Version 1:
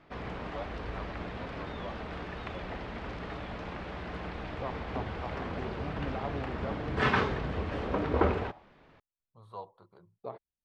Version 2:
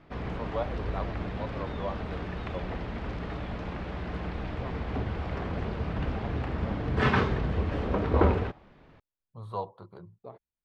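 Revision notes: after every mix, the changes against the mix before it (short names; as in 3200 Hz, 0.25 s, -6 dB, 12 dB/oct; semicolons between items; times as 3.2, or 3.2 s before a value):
first voice +7.5 dB; second voice -6.5 dB; master: add low shelf 300 Hz +7.5 dB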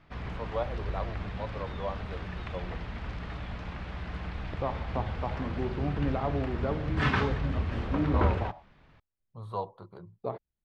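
second voice +11.0 dB; background: add bell 380 Hz -9 dB 2.1 oct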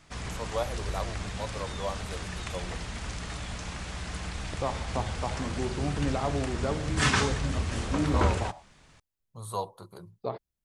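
master: remove air absorption 350 m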